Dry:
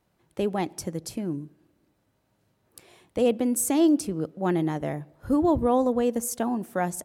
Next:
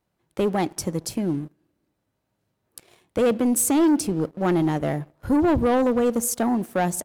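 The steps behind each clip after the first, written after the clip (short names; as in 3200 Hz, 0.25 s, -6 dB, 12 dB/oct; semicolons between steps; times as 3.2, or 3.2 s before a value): sample leveller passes 2; gain -1.5 dB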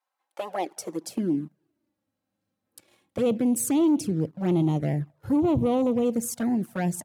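high-pass sweep 940 Hz -> 120 Hz, 0.15–1.87; envelope flanger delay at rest 3.8 ms, full sweep at -15.5 dBFS; gain -3.5 dB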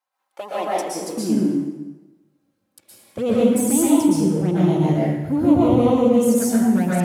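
plate-style reverb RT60 1.1 s, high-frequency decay 0.85×, pre-delay 0.105 s, DRR -7 dB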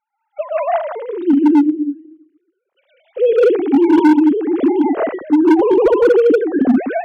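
sine-wave speech; hard clip -13 dBFS, distortion -10 dB; gain +6.5 dB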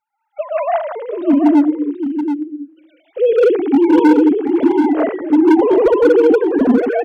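echo 0.729 s -8 dB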